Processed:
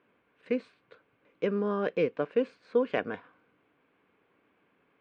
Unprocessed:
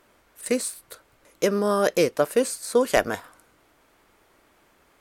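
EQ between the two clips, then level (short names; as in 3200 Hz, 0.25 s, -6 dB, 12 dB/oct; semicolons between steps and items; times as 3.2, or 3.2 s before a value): speaker cabinet 190–2300 Hz, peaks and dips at 230 Hz -3 dB, 350 Hz -8 dB, 610 Hz -5 dB, 890 Hz -9 dB, 1300 Hz -10 dB, 1900 Hz -10 dB; bell 650 Hz -7 dB 0.63 oct; 0.0 dB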